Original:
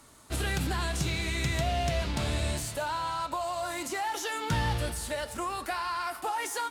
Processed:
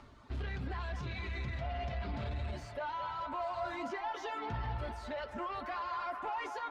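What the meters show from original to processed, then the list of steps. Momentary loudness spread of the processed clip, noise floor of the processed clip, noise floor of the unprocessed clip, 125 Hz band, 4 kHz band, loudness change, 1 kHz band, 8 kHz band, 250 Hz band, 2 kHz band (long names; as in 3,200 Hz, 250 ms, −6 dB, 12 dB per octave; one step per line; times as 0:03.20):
3 LU, −50 dBFS, −46 dBFS, −8.0 dB, −14.5 dB, −8.0 dB, −6.0 dB, −26.0 dB, −9.0 dB, −9.0 dB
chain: reverb reduction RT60 1.7 s
low-shelf EQ 120 Hz +7 dB
brickwall limiter −27 dBFS, peak gain reduction 11.5 dB
upward compression, threshold −51 dBFS
soft clipping −33.5 dBFS, distortion −14 dB
high-frequency loss of the air 240 metres
notch comb filter 160 Hz
delay with a band-pass on its return 220 ms, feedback 75%, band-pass 1,100 Hz, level −7 dB
level +1 dB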